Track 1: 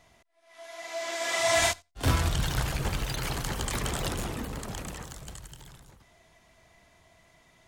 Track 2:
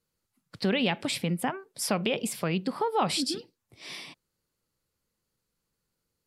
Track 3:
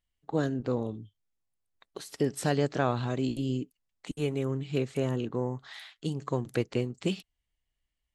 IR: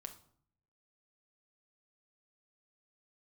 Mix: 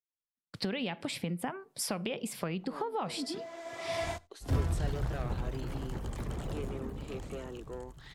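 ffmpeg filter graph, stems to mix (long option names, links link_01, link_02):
-filter_complex "[0:a]tiltshelf=frequency=870:gain=7,adelay=2450,volume=-10.5dB[link_01];[1:a]agate=range=-33dB:threshold=-52dB:ratio=3:detection=peak,volume=0.5dB,asplit=2[link_02][link_03];[link_03]volume=-19.5dB[link_04];[2:a]highpass=frequency=300:width=0.5412,highpass=frequency=300:width=1.3066,asoftclip=type=tanh:threshold=-27.5dB,adelay=2350,volume=-7.5dB[link_05];[link_02][link_05]amix=inputs=2:normalize=0,acompressor=threshold=-32dB:ratio=10,volume=0dB[link_06];[3:a]atrim=start_sample=2205[link_07];[link_04][link_07]afir=irnorm=-1:irlink=0[link_08];[link_01][link_06][link_08]amix=inputs=3:normalize=0,adynamicequalizer=threshold=0.00251:dfrequency=2600:dqfactor=0.7:tfrequency=2600:tqfactor=0.7:attack=5:release=100:ratio=0.375:range=2.5:mode=cutabove:tftype=highshelf"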